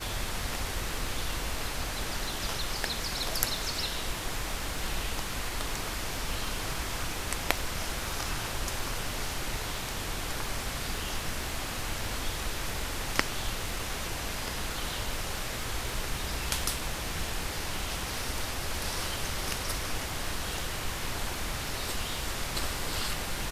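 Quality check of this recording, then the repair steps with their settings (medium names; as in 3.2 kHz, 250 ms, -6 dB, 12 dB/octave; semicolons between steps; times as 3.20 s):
crackle 41 per s -37 dBFS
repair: de-click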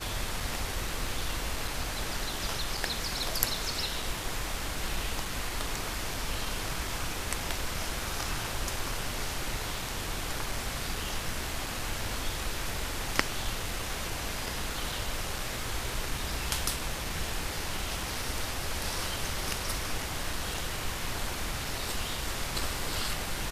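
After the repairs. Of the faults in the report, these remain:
nothing left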